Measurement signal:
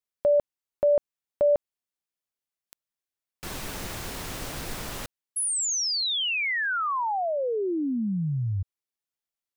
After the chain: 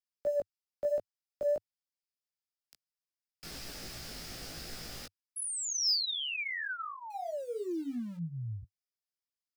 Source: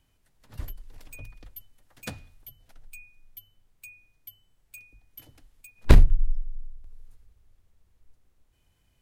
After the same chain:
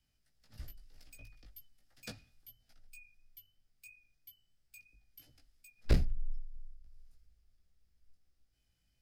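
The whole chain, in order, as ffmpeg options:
-filter_complex "[0:a]equalizer=f=100:t=o:w=0.33:g=-5,equalizer=f=1k:t=o:w=0.33:g=-12,equalizer=f=5k:t=o:w=0.33:g=11,acrossover=split=350|500|2000[a][b][c][d];[b]acrusher=bits=7:mix=0:aa=0.000001[e];[a][e][c][d]amix=inputs=4:normalize=0,flanger=delay=16.5:depth=2.4:speed=3,asoftclip=type=tanh:threshold=-11.5dB,volume=-6.5dB"

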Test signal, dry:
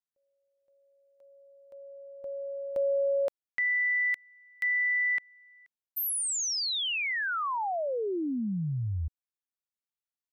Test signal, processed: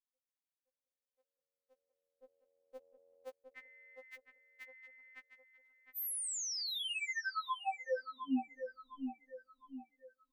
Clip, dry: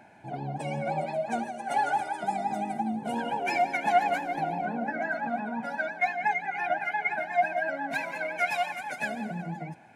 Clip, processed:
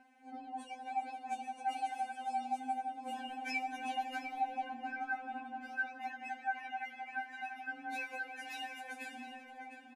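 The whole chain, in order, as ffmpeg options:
-filter_complex "[0:a]asplit=2[a][b];[b]adelay=709,lowpass=f=2.3k:p=1,volume=-7dB,asplit=2[c][d];[d]adelay=709,lowpass=f=2.3k:p=1,volume=0.44,asplit=2[e][f];[f]adelay=709,lowpass=f=2.3k:p=1,volume=0.44,asplit=2[g][h];[h]adelay=709,lowpass=f=2.3k:p=1,volume=0.44,asplit=2[i][j];[j]adelay=709,lowpass=f=2.3k:p=1,volume=0.44[k];[a][c][e][g][i][k]amix=inputs=6:normalize=0,afftfilt=real='re*3.46*eq(mod(b,12),0)':imag='im*3.46*eq(mod(b,12),0)':win_size=2048:overlap=0.75,volume=-6.5dB"

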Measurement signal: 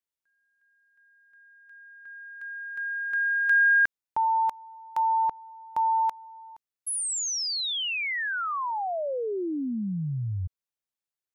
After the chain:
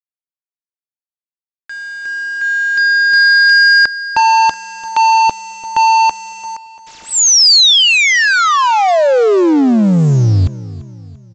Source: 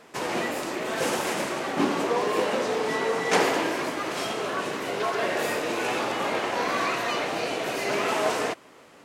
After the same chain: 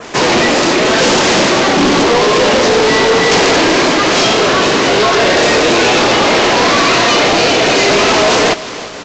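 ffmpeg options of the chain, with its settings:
-filter_complex "[0:a]apsyclip=21.5dB,acrossover=split=470[a][b];[b]asoftclip=type=tanh:threshold=-10dB[c];[a][c]amix=inputs=2:normalize=0,acrusher=bits=4:mix=0:aa=0.000001,aresample=16000,asoftclip=type=hard:threshold=-8dB,aresample=44100,adynamicequalizer=threshold=0.0355:dfrequency=4500:dqfactor=0.9:tfrequency=4500:tqfactor=0.9:attack=5:release=100:ratio=0.417:range=3:mode=boostabove:tftype=bell,aecho=1:1:342|684|1026|1368:0.141|0.0664|0.0312|0.0147"

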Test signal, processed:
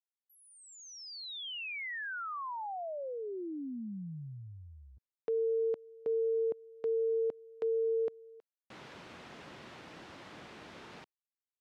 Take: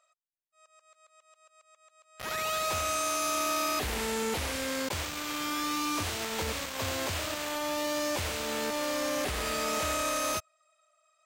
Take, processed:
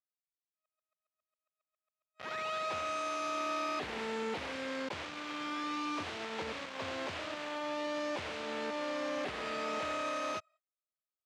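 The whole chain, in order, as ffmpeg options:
-af "agate=range=-33dB:threshold=-55dB:ratio=16:detection=peak,highpass=160,lowpass=3.4k,volume=-4.5dB"

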